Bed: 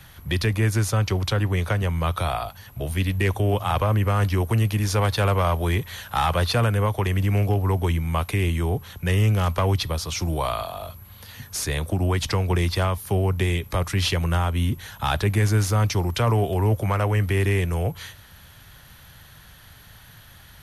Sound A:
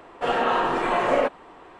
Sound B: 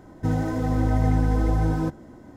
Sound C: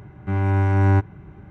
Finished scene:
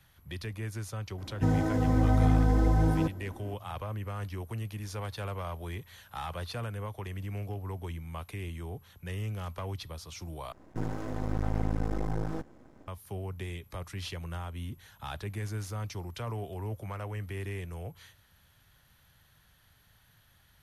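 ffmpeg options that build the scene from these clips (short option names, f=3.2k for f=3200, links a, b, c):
-filter_complex "[2:a]asplit=2[a][b];[0:a]volume=-16dB[c];[a]aresample=32000,aresample=44100[d];[b]aeval=exprs='max(val(0),0)':c=same[e];[c]asplit=2[f][g];[f]atrim=end=10.524[h];[e]atrim=end=2.36,asetpts=PTS-STARTPTS,volume=-6.5dB[i];[g]atrim=start=12.876[j];[d]atrim=end=2.36,asetpts=PTS-STARTPTS,volume=-2.5dB,afade=t=in:d=0.004:c=hsin,afade=t=out:st=2.356:d=0.004:c=hsin,adelay=1180[k];[h][i]acrossfade=d=0.004:c1=hsin:c2=hsin[l];[l][j]acrossfade=d=0.004:c1=hsin:c2=hsin[m];[m][k]amix=inputs=2:normalize=0"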